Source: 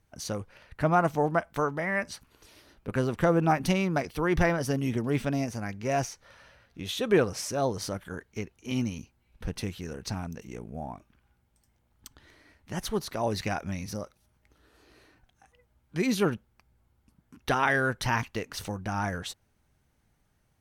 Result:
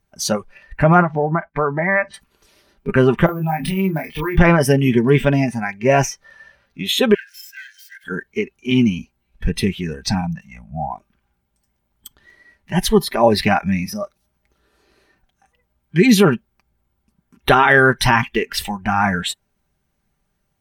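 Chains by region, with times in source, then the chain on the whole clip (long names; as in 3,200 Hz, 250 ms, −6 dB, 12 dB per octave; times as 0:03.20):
0:01.02–0:02.14: downward expander −45 dBFS + low-pass filter 2,400 Hz + downward compressor 4 to 1, threshold −29 dBFS
0:03.26–0:04.38: downward compressor 8 to 1, threshold −34 dBFS + double-tracking delay 26 ms −2.5 dB + bad sample-rate conversion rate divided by 3×, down filtered, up hold
0:07.14–0:08.04: lower of the sound and its delayed copy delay 1.9 ms + linear-phase brick-wall high-pass 1,400 Hz + downward compressor 4 to 1, threshold −46 dBFS
0:10.21–0:10.92: Chebyshev band-stop filter 210–660 Hz + high-shelf EQ 3,300 Hz −6 dB
whole clip: noise reduction from a noise print of the clip's start 15 dB; comb filter 5.1 ms, depth 46%; boost into a limiter +15.5 dB; level −1 dB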